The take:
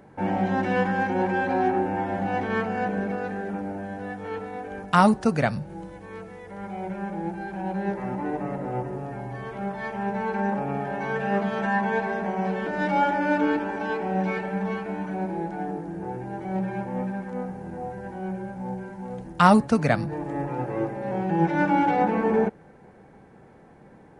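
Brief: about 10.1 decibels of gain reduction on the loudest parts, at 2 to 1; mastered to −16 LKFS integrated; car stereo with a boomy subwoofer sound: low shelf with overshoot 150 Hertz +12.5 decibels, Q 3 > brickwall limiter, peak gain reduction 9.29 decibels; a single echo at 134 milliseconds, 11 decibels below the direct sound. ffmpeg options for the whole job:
ffmpeg -i in.wav -af "acompressor=threshold=-30dB:ratio=2,lowshelf=frequency=150:width_type=q:width=3:gain=12.5,aecho=1:1:134:0.282,volume=15dB,alimiter=limit=-6dB:level=0:latency=1" out.wav

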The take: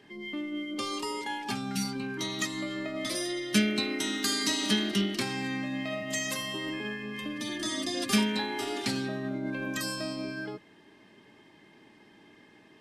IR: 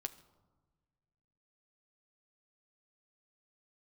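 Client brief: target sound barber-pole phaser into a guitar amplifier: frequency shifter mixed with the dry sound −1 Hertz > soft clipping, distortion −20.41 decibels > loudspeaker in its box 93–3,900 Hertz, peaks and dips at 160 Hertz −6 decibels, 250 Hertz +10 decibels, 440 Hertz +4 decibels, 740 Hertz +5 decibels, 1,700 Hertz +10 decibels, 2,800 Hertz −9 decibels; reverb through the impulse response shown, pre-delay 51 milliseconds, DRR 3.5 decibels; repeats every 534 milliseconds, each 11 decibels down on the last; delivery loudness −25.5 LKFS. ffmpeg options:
-filter_complex "[0:a]aecho=1:1:534|1068|1602:0.282|0.0789|0.0221,asplit=2[link_01][link_02];[1:a]atrim=start_sample=2205,adelay=51[link_03];[link_02][link_03]afir=irnorm=-1:irlink=0,volume=-1dB[link_04];[link_01][link_04]amix=inputs=2:normalize=0,asplit=2[link_05][link_06];[link_06]afreqshift=-1[link_07];[link_05][link_07]amix=inputs=2:normalize=1,asoftclip=threshold=-20dB,highpass=93,equalizer=frequency=160:width_type=q:width=4:gain=-6,equalizer=frequency=250:width_type=q:width=4:gain=10,equalizer=frequency=440:width_type=q:width=4:gain=4,equalizer=frequency=740:width_type=q:width=4:gain=5,equalizer=frequency=1700:width_type=q:width=4:gain=10,equalizer=frequency=2800:width_type=q:width=4:gain=-9,lowpass=frequency=3900:width=0.5412,lowpass=frequency=3900:width=1.3066,volume=5.5dB"

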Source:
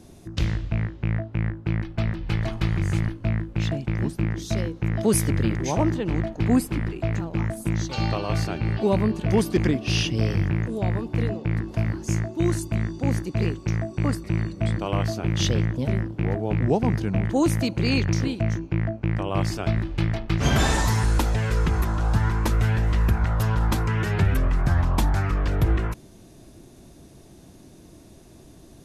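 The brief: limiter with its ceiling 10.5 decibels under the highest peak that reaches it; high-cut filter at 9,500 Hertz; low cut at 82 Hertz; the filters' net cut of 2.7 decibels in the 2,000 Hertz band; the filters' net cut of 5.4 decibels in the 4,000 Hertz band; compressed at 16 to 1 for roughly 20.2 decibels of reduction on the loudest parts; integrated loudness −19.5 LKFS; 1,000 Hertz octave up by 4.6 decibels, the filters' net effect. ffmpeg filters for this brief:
ffmpeg -i in.wav -af "highpass=82,lowpass=9500,equalizer=frequency=1000:width_type=o:gain=7,equalizer=frequency=2000:width_type=o:gain=-4.5,equalizer=frequency=4000:width_type=o:gain=-6,acompressor=threshold=-35dB:ratio=16,volume=22.5dB,alimiter=limit=-8.5dB:level=0:latency=1" out.wav

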